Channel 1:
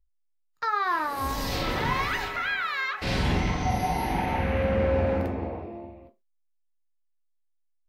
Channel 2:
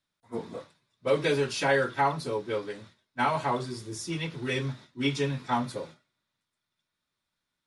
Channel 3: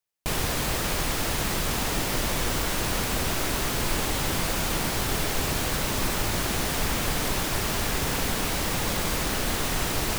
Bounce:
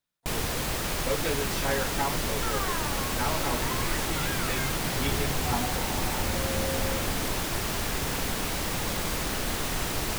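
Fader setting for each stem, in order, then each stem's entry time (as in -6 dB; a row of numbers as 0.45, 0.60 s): -9.0, -5.5, -3.0 dB; 1.80, 0.00, 0.00 s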